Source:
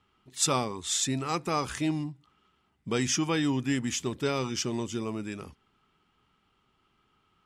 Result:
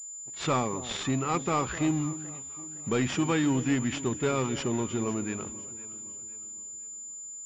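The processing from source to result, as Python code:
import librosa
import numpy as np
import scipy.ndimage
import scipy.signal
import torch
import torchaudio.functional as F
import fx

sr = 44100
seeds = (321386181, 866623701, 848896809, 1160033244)

y = fx.leveller(x, sr, passes=2)
y = fx.echo_alternate(y, sr, ms=255, hz=890.0, feedback_pct=63, wet_db=-13.5)
y = fx.pwm(y, sr, carrier_hz=7100.0)
y = F.gain(torch.from_numpy(y), -4.5).numpy()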